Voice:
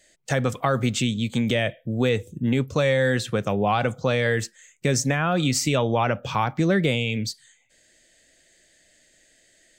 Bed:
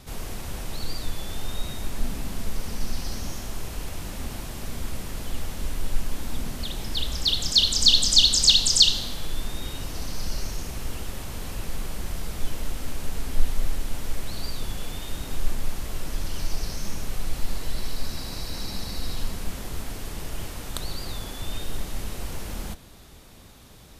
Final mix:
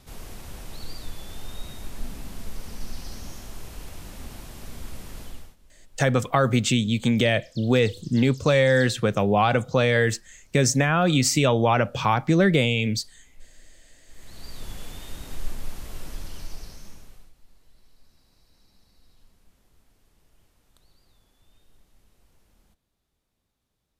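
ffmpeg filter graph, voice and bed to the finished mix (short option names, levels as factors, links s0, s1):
-filter_complex "[0:a]adelay=5700,volume=1.26[s0];[1:a]volume=6.68,afade=t=out:st=5.21:d=0.35:silence=0.0794328,afade=t=in:st=14.06:d=0.65:silence=0.0749894,afade=t=out:st=16.06:d=1.27:silence=0.0630957[s1];[s0][s1]amix=inputs=2:normalize=0"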